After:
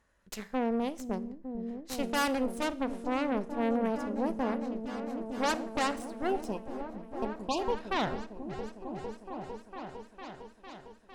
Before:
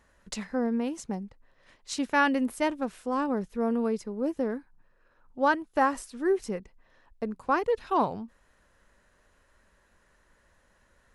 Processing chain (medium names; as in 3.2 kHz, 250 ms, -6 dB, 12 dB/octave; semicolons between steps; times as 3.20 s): Chebyshev shaper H 8 -11 dB, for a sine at -12 dBFS; spectral selection erased 6.30–7.81 s, 1.1–2.4 kHz; on a send: delay with an opening low-pass 454 ms, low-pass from 200 Hz, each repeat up 1 oct, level -3 dB; on the sum: Schroeder reverb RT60 0.56 s, combs from 27 ms, DRR 17 dB; trim -7.5 dB